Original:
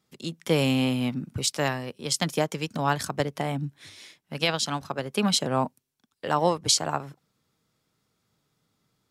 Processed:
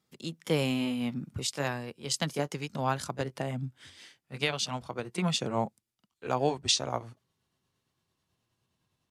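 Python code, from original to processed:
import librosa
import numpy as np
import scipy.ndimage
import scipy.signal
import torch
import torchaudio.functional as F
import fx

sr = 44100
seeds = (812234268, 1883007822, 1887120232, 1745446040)

y = fx.pitch_glide(x, sr, semitones=-4.0, runs='starting unshifted')
y = y * 10.0 ** (-4.0 / 20.0)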